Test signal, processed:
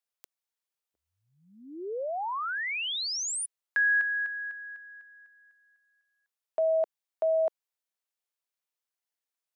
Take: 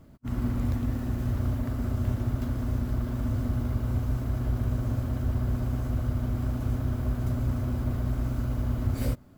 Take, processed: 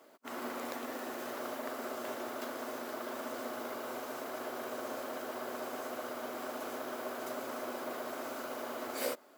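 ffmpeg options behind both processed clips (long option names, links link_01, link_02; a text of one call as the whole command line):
ffmpeg -i in.wav -af "highpass=frequency=410:width=0.5412,highpass=frequency=410:width=1.3066,volume=4dB" out.wav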